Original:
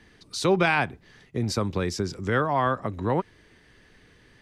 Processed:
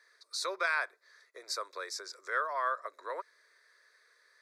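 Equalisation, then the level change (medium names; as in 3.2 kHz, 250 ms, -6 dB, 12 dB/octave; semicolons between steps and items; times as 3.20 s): high-pass 630 Hz 24 dB/octave; peaking EQ 4.1 kHz +8 dB 0.57 oct; static phaser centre 800 Hz, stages 6; -4.0 dB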